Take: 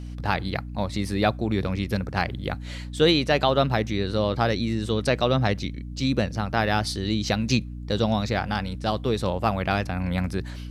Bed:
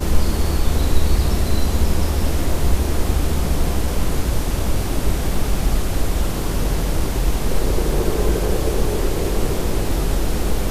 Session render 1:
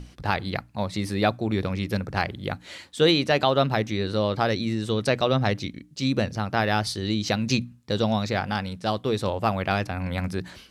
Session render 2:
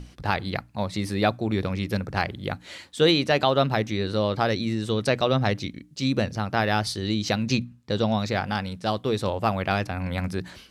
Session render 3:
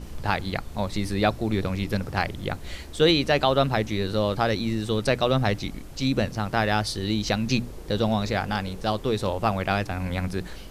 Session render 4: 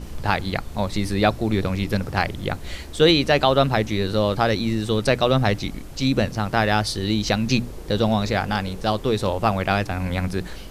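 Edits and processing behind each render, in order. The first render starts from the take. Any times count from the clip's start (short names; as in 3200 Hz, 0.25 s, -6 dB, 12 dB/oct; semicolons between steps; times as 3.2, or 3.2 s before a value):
notches 60/120/180/240/300 Hz
7.43–8.19 high shelf 7000 Hz -7.5 dB
add bed -21.5 dB
gain +3.5 dB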